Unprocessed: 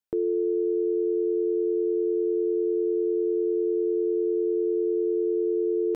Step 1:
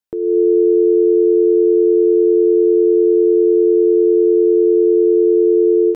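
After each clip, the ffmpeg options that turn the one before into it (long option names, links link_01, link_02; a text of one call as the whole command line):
ffmpeg -i in.wav -af "dynaudnorm=framelen=190:gausssize=3:maxgain=11dB,volume=2dB" out.wav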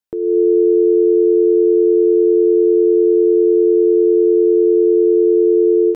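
ffmpeg -i in.wav -af anull out.wav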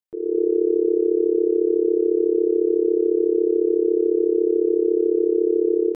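ffmpeg -i in.wav -af "tremolo=f=34:d=0.824,volume=-3.5dB" out.wav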